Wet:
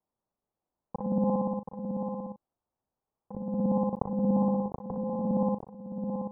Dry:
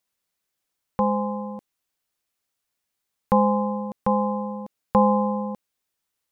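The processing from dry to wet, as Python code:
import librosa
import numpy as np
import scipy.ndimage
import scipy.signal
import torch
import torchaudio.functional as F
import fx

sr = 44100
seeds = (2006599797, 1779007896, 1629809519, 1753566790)

y = fx.local_reverse(x, sr, ms=59.0)
y = scipy.signal.sosfilt(scipy.signal.cheby1(3, 1.0, 930.0, 'lowpass', fs=sr, output='sos'), y)
y = fx.env_lowpass_down(y, sr, base_hz=380.0, full_db=-20.0)
y = fx.over_compress(y, sr, threshold_db=-28.0, ratio=-0.5)
y = fx.doubler(y, sr, ms=39.0, db=-10.5)
y = y + 10.0 ** (-6.5 / 20.0) * np.pad(y, (int(729 * sr / 1000.0), 0))[:len(y)]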